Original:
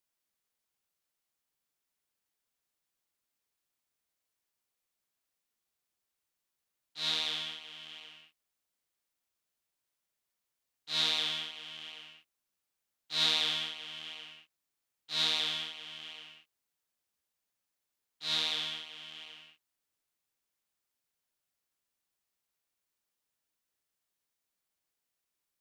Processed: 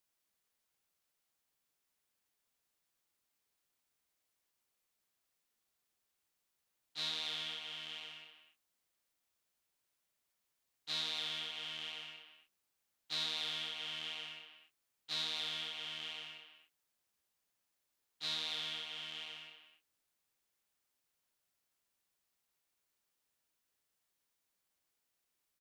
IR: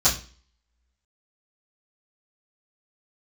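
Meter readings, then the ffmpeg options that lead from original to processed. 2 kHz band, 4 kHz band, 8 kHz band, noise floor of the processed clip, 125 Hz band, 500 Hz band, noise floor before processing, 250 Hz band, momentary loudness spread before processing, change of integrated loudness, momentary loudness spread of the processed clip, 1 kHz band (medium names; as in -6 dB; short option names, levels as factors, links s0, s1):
-5.0 dB, -6.5 dB, -7.0 dB, -84 dBFS, -5.5 dB, -6.0 dB, under -85 dBFS, -6.5 dB, 19 LU, -8.0 dB, 15 LU, -6.0 dB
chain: -filter_complex "[0:a]acompressor=threshold=0.0126:ratio=4,asplit=2[s0][s1];[s1]adelay=240,highpass=300,lowpass=3400,asoftclip=type=hard:threshold=0.0188,volume=0.355[s2];[s0][s2]amix=inputs=2:normalize=0,volume=1.19"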